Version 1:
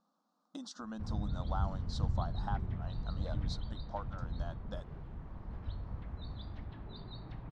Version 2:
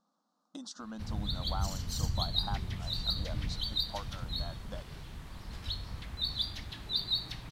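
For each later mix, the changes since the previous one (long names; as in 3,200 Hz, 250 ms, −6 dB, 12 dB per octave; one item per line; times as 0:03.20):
speech: add high-shelf EQ 6,500 Hz +9 dB
background: remove low-pass filter 1,000 Hz 12 dB per octave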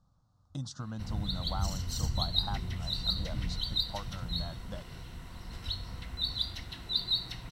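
speech: remove linear-phase brick-wall high-pass 190 Hz
background: add EQ curve with evenly spaced ripples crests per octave 2, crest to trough 7 dB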